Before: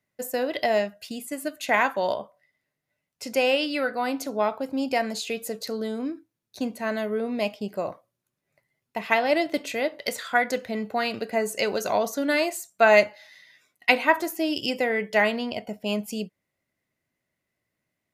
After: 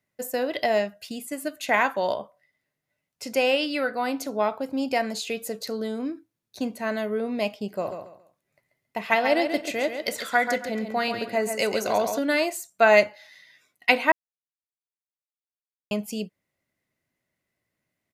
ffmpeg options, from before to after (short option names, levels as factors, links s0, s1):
-filter_complex "[0:a]asplit=3[s0][s1][s2];[s0]afade=t=out:st=7.8:d=0.02[s3];[s1]aecho=1:1:137|274|411:0.422|0.114|0.0307,afade=t=in:st=7.8:d=0.02,afade=t=out:st=12.18:d=0.02[s4];[s2]afade=t=in:st=12.18:d=0.02[s5];[s3][s4][s5]amix=inputs=3:normalize=0,asplit=3[s6][s7][s8];[s6]atrim=end=14.12,asetpts=PTS-STARTPTS,afade=t=out:st=14.116:d=0.004:c=hsin[s9];[s7]atrim=start=14.12:end=15.91,asetpts=PTS-STARTPTS,volume=0[s10];[s8]atrim=start=15.91,asetpts=PTS-STARTPTS,afade=t=in:d=0.004:c=hsin[s11];[s9][s10][s11]concat=n=3:v=0:a=1"